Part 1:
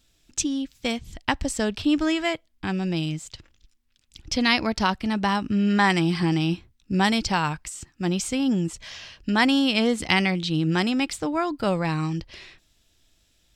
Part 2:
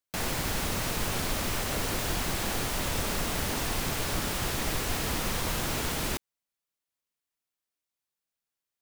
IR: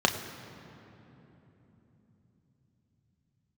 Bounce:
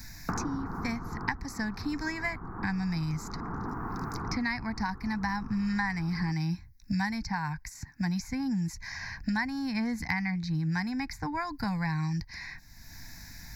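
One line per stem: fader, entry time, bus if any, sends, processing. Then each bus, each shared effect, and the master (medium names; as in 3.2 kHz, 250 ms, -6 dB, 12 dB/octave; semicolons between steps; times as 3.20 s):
-2.0 dB, 0.00 s, no send, static phaser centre 1.9 kHz, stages 8
+1.0 dB, 0.15 s, no send, steep low-pass 1.3 kHz 36 dB/octave; auto duck -12 dB, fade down 1.35 s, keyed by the first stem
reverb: none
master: static phaser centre 1.4 kHz, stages 4; three bands compressed up and down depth 100%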